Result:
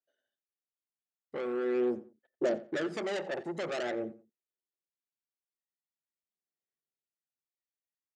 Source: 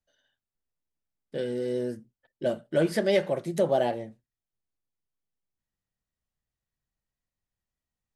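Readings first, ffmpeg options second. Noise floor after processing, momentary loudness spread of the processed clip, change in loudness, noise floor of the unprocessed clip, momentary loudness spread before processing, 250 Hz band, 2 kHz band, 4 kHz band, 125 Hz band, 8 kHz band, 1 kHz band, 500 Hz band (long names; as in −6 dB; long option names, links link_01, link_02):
below −85 dBFS, 8 LU, −6.5 dB, below −85 dBFS, 13 LU, −4.0 dB, −2.5 dB, −6.0 dB, −14.5 dB, −7.0 dB, −7.0 dB, −6.5 dB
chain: -filter_complex "[0:a]afwtdn=0.02,highshelf=frequency=3600:gain=-9.5,alimiter=limit=-17.5dB:level=0:latency=1:release=259,asoftclip=type=tanh:threshold=-34.5dB,aphaser=in_gain=1:out_gain=1:delay=1.1:decay=0.52:speed=0.45:type=sinusoidal,highpass=340,equalizer=frequency=370:width_type=q:width=4:gain=5,equalizer=frequency=990:width_type=q:width=4:gain=-10,equalizer=frequency=7100:width_type=q:width=4:gain=7,lowpass=frequency=9700:width=0.5412,lowpass=frequency=9700:width=1.3066,asplit=2[link_01][link_02];[link_02]adelay=88,lowpass=frequency=3600:poles=1,volume=-16.5dB,asplit=2[link_03][link_04];[link_04]adelay=88,lowpass=frequency=3600:poles=1,volume=0.25[link_05];[link_03][link_05]amix=inputs=2:normalize=0[link_06];[link_01][link_06]amix=inputs=2:normalize=0,volume=5.5dB"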